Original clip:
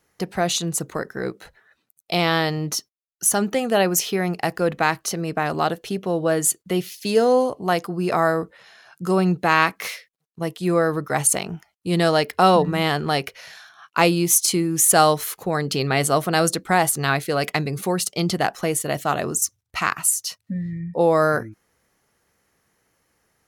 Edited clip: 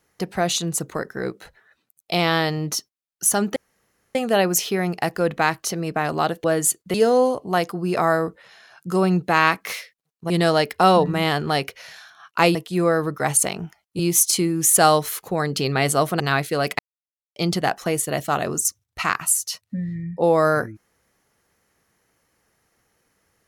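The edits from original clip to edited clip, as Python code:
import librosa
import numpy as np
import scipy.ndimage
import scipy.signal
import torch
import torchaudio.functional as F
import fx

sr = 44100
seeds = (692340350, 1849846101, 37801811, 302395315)

y = fx.edit(x, sr, fx.insert_room_tone(at_s=3.56, length_s=0.59),
    fx.cut(start_s=5.85, length_s=0.39),
    fx.cut(start_s=6.74, length_s=0.35),
    fx.move(start_s=10.45, length_s=1.44, to_s=14.14),
    fx.cut(start_s=16.35, length_s=0.62),
    fx.silence(start_s=17.56, length_s=0.57), tone=tone)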